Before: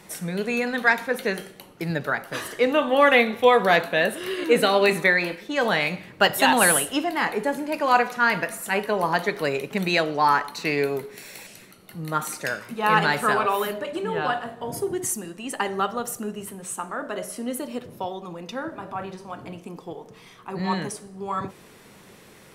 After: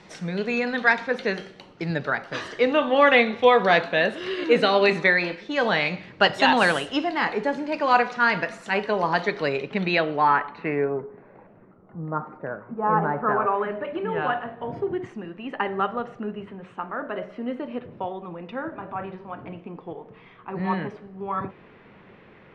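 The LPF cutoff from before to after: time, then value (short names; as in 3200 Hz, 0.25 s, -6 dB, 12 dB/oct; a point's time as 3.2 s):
LPF 24 dB/oct
9.32 s 5500 Hz
10.42 s 2800 Hz
11.09 s 1200 Hz
13.12 s 1200 Hz
13.96 s 2700 Hz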